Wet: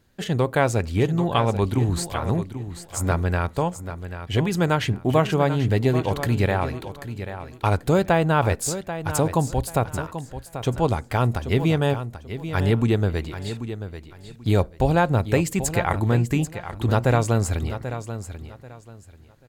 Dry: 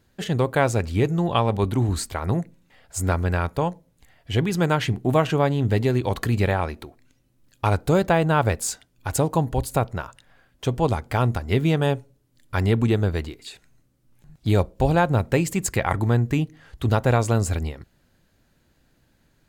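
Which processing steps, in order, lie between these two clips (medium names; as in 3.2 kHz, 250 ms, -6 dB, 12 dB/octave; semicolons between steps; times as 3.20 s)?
feedback delay 787 ms, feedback 24%, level -11 dB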